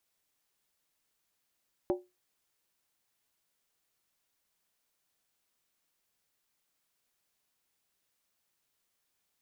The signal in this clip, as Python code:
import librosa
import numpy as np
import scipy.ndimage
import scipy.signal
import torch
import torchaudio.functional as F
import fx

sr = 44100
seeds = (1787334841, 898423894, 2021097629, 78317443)

y = fx.strike_skin(sr, length_s=0.63, level_db=-23, hz=361.0, decay_s=0.23, tilt_db=6.0, modes=5)